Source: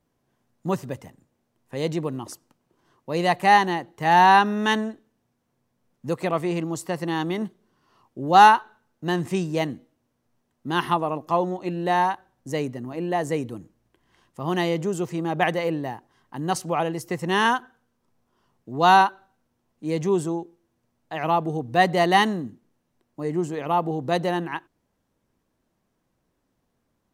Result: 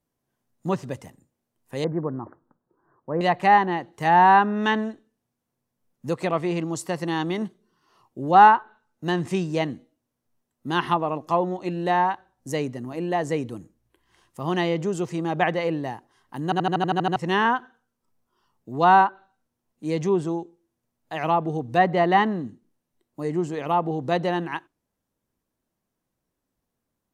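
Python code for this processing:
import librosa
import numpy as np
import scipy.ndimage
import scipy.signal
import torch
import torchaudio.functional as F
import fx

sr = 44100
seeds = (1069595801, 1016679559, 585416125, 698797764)

y = fx.steep_lowpass(x, sr, hz=1700.0, slope=48, at=(1.84, 3.21))
y = fx.edit(y, sr, fx.stutter_over(start_s=16.44, slice_s=0.08, count=9), tone=tone)
y = fx.noise_reduce_blind(y, sr, reduce_db=8)
y = fx.env_lowpass_down(y, sr, base_hz=1800.0, full_db=-15.5)
y = fx.high_shelf(y, sr, hz=8600.0, db=11.0)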